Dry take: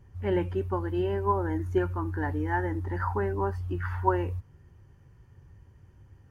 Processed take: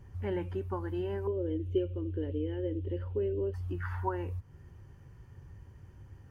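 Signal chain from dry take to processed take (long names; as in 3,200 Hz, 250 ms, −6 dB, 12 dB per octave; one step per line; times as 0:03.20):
downward compressor 2 to 1, threshold −41 dBFS, peak gain reduction 12.5 dB
0:01.27–0:03.54: drawn EQ curve 110 Hz 0 dB, 160 Hz −6 dB, 530 Hz +9 dB, 770 Hz −24 dB, 1,800 Hz −17 dB, 3,000 Hz +10 dB, 5,000 Hz −17 dB
level +2.5 dB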